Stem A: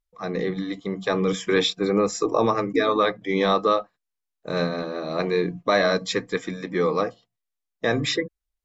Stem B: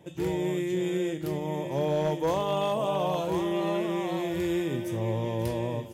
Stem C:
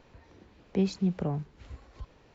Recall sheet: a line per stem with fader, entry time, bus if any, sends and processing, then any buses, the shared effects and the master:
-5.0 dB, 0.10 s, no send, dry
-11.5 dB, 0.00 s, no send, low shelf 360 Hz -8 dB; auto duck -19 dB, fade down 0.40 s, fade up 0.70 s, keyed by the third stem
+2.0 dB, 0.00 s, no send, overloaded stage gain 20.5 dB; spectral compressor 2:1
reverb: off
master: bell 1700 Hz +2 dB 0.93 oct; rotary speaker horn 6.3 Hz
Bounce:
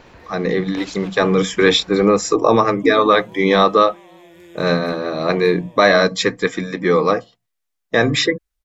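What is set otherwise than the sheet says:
stem A -5.0 dB -> +7.0 dB; master: missing rotary speaker horn 6.3 Hz

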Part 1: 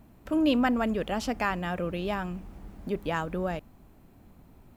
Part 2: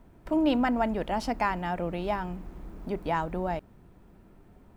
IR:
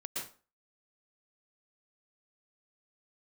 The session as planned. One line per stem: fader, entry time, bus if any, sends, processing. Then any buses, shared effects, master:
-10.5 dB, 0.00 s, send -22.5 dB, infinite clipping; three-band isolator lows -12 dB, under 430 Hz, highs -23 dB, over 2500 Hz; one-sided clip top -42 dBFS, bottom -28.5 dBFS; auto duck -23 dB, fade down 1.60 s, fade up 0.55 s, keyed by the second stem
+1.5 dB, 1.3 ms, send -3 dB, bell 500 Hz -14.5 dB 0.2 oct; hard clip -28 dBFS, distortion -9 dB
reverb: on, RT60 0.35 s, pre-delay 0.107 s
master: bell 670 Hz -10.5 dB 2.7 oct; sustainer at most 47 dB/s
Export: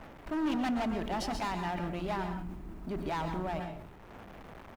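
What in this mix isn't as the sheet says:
stem 2 +1.5 dB -> -5.5 dB; master: missing bell 670 Hz -10.5 dB 2.7 oct

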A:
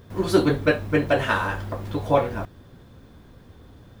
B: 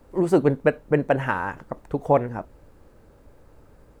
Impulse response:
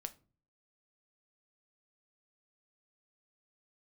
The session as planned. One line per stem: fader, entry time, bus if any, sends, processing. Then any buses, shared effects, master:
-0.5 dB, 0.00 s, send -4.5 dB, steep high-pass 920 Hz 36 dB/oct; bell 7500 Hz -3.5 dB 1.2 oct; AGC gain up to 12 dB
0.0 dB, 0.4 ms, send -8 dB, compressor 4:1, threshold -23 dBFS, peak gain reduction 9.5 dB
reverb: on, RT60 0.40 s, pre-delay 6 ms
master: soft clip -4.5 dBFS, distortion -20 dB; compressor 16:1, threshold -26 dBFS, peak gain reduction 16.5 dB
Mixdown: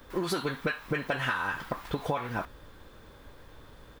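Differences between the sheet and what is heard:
stem A: missing AGC gain up to 12 dB; stem B: send off

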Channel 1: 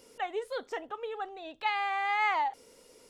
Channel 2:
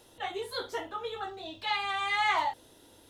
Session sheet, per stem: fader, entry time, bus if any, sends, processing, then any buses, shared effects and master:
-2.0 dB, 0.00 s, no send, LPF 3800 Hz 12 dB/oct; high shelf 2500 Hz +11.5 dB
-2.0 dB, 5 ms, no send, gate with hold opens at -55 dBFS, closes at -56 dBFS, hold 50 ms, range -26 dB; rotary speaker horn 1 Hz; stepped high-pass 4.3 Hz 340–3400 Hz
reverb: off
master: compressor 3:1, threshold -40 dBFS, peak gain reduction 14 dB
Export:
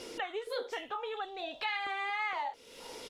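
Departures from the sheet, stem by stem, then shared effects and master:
stem 1 -2.0 dB -> +10.0 dB; stem 2 -2.0 dB -> +7.0 dB

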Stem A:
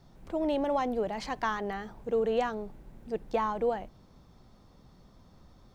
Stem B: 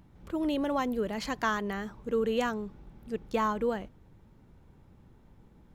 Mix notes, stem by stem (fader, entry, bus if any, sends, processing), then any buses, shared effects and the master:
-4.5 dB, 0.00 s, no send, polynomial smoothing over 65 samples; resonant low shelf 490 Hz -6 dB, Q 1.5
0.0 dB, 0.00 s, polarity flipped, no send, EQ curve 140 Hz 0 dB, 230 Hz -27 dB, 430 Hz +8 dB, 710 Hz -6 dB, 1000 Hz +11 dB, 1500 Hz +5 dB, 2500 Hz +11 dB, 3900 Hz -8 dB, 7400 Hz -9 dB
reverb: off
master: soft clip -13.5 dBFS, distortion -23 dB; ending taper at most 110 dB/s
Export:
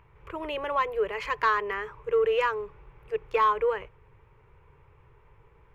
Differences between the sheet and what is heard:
stem A -4.5 dB -> -13.5 dB; master: missing ending taper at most 110 dB/s

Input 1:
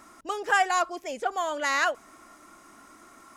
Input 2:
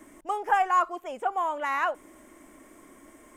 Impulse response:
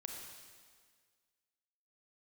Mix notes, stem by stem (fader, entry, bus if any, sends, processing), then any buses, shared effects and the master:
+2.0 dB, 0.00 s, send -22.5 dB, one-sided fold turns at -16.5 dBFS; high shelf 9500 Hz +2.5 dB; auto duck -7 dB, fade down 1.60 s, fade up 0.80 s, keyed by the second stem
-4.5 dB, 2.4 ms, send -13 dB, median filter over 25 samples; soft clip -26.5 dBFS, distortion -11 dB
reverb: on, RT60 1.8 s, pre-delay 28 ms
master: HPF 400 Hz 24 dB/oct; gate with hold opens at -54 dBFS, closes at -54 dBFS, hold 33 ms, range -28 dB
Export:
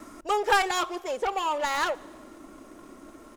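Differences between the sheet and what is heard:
stem 2 -4.5 dB -> +4.5 dB; master: missing HPF 400 Hz 24 dB/oct

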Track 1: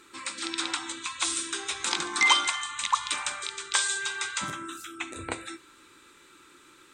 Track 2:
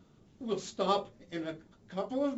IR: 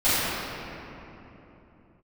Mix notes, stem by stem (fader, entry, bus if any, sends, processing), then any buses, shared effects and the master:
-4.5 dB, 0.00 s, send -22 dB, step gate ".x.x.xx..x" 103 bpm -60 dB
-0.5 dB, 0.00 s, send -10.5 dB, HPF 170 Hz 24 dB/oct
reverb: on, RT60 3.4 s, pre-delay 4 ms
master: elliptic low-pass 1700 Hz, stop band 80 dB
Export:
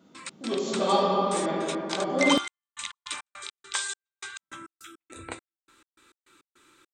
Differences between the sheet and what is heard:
stem 1: send off; master: missing elliptic low-pass 1700 Hz, stop band 80 dB

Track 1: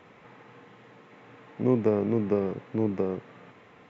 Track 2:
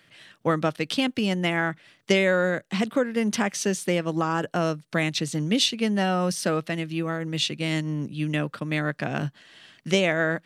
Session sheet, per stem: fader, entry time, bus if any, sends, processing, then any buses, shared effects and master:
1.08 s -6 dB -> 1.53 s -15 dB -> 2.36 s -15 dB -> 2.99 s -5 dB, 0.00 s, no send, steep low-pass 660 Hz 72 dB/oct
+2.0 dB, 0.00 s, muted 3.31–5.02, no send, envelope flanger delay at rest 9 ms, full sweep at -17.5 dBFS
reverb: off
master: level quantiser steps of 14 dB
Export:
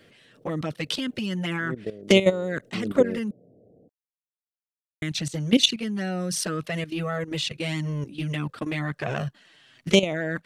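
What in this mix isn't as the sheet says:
stem 1 -6.0 dB -> +2.5 dB; stem 2 +2.0 dB -> +8.0 dB

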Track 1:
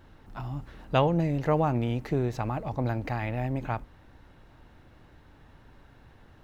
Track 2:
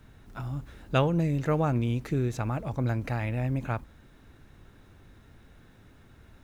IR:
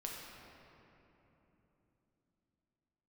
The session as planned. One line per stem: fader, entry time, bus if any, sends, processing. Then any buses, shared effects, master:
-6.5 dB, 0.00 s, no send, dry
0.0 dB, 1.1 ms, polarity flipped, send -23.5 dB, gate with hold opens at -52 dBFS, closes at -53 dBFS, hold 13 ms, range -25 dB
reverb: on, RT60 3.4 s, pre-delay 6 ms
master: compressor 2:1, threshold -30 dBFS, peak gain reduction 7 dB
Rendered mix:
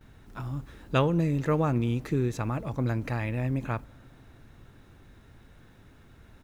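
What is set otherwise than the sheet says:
stem 1 -6.5 dB -> -13.5 dB; master: missing compressor 2:1, threshold -30 dBFS, peak gain reduction 7 dB

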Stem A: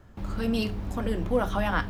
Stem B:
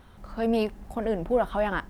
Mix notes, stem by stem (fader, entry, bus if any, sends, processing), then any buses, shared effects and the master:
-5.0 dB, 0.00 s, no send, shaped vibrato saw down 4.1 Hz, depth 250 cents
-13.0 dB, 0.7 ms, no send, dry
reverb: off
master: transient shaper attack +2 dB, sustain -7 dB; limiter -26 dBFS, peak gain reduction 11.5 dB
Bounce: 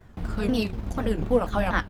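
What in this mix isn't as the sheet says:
stem A -5.0 dB -> +1.5 dB; master: missing limiter -26 dBFS, peak gain reduction 11.5 dB

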